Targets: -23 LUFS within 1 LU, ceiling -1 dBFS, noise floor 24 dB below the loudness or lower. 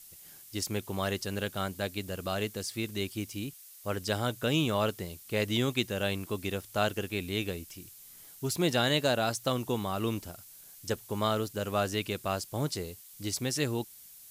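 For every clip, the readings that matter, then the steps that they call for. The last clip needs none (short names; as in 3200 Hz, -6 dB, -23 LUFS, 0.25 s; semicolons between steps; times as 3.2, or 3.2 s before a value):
noise floor -52 dBFS; noise floor target -56 dBFS; loudness -32.0 LUFS; peak -12.5 dBFS; loudness target -23.0 LUFS
-> noise print and reduce 6 dB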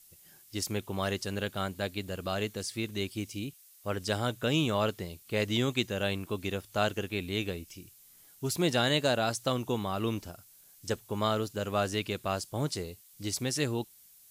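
noise floor -58 dBFS; loudness -32.0 LUFS; peak -12.5 dBFS; loudness target -23.0 LUFS
-> gain +9 dB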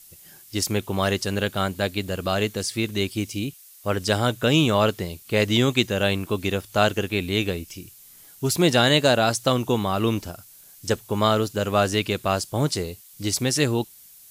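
loudness -23.0 LUFS; peak -3.5 dBFS; noise floor -49 dBFS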